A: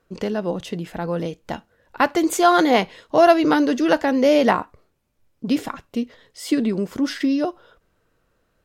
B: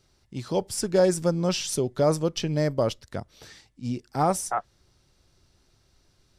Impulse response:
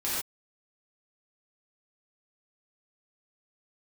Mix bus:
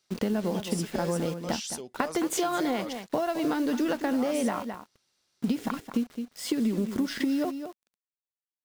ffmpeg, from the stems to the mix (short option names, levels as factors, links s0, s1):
-filter_complex "[0:a]acompressor=threshold=0.1:ratio=16,acrusher=bits=6:mix=0:aa=0.000001,aeval=exprs='sgn(val(0))*max(abs(val(0))-0.00596,0)':c=same,volume=0.944,asplit=2[s0][s1];[s1]volume=0.237[s2];[1:a]highpass=f=1500:p=1,aeval=exprs='0.158*(cos(1*acos(clip(val(0)/0.158,-1,1)))-cos(1*PI/2))+0.0112*(cos(5*acos(clip(val(0)/0.158,-1,1)))-cos(5*PI/2))':c=same,volume=0.473[s3];[s2]aecho=0:1:214:1[s4];[s0][s3][s4]amix=inputs=3:normalize=0,equalizer=f=220:t=o:w=0.54:g=6.5,acompressor=threshold=0.0631:ratio=4"